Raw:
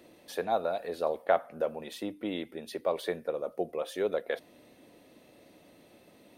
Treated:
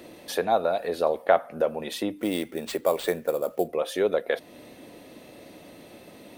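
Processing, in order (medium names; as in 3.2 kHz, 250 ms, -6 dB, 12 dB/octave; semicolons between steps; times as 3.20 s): in parallel at 0 dB: compression, threshold -40 dBFS, peak gain reduction 19 dB; 2.18–3.68 s: on the sum: sample-rate reducer 12 kHz, jitter 0%; trim +4.5 dB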